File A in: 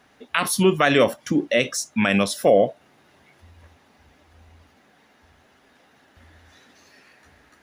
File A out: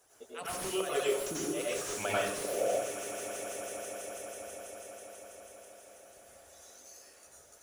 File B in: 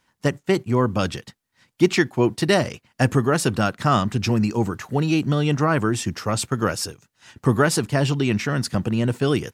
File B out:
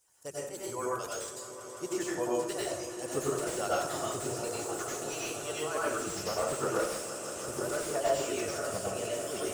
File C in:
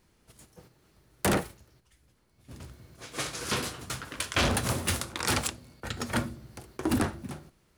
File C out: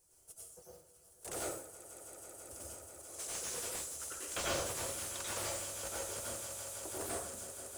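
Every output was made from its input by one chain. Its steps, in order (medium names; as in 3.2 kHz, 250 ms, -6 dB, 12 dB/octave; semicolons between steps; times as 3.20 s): reverb removal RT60 1.3 s; tilt EQ +2 dB/octave; harmonic-percussive split harmonic -15 dB; graphic EQ 125/250/500/1000/2000/4000/8000 Hz -3/-12/+5/-5/-12/-10/+10 dB; slow attack 178 ms; in parallel at +2 dB: compression, threshold -39 dBFS; on the sum: flange 0.72 Hz, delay 2.3 ms, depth 3.9 ms, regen -76%; on a send: echo with a slow build-up 163 ms, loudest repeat 5, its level -16 dB; on the sum: plate-style reverb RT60 0.65 s, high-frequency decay 0.75×, pre-delay 80 ms, DRR -6 dB; slew-rate limiter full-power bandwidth 120 Hz; trim -4 dB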